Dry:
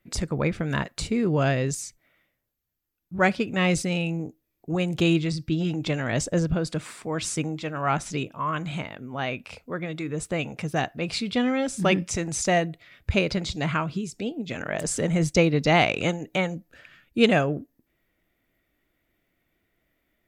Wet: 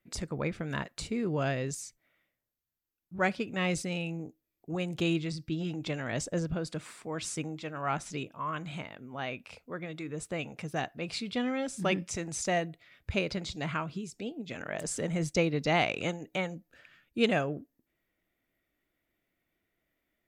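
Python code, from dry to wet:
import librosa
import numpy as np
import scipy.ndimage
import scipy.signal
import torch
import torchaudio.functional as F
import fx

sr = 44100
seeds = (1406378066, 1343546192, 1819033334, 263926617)

y = fx.low_shelf(x, sr, hz=130.0, db=-4.5)
y = y * librosa.db_to_amplitude(-7.0)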